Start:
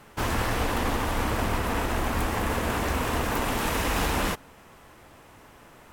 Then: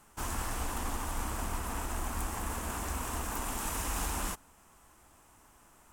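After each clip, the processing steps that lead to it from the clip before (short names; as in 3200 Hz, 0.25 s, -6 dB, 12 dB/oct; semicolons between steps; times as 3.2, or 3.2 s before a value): ten-band EQ 125 Hz -9 dB, 250 Hz -3 dB, 500 Hz -10 dB, 2000 Hz -7 dB, 4000 Hz -7 dB, 8000 Hz +7 dB; gain -5 dB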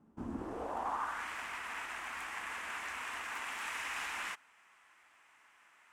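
band-pass sweep 230 Hz -> 2100 Hz, 0.27–1.28; gain +7.5 dB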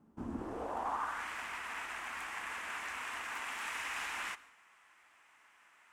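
plate-style reverb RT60 0.74 s, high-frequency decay 0.8×, pre-delay 85 ms, DRR 18.5 dB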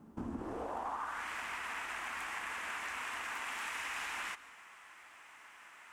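compressor 3:1, threshold -49 dBFS, peak gain reduction 12 dB; gain +8.5 dB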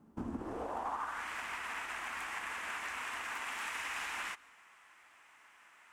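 upward expander 1.5:1, over -52 dBFS; gain +2 dB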